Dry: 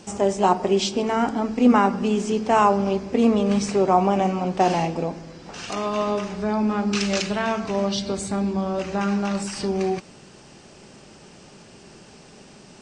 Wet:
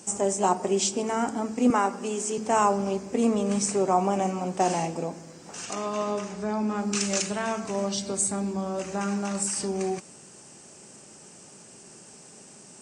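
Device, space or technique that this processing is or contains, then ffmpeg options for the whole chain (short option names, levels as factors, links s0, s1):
budget condenser microphone: -filter_complex "[0:a]highpass=68,highpass=f=110:p=1,highshelf=f=5800:t=q:w=1.5:g=12,asettb=1/sr,asplit=3[s0][s1][s2];[s0]atrim=end=1.704[s3];[s1]atrim=start=1.7:end=2.38,asetpts=PTS-STARTPTS,afade=t=in:d=0.004:c=qsin,afade=t=out:st=0.676:d=0.004:c=qsin,highpass=300[s4];[s2]atrim=start=2.376[s5];[s3][s4]acrossfade=d=0.004:c1=hsin:c2=qsin[s6];[s6][s5]acrossfade=d=0.004:c1=qsin:c2=hsin,asettb=1/sr,asplit=3[s7][s8][s9];[s7]atrim=end=5.654[s10];[s8]atrim=start=5.65:end=6.75,asetpts=PTS-STARTPTS,afade=t=in:d=0.004:c=qsin,afade=t=out:st=1.096:d=0.004:c=qsin,lowpass=7100[s11];[s9]atrim=start=6.746[s12];[s10][s11]acrossfade=d=0.004:c1=hsin:c2=qsin[s13];[s13][s12]acrossfade=d=0.004:c1=qsin:c2=hsin,volume=0.596"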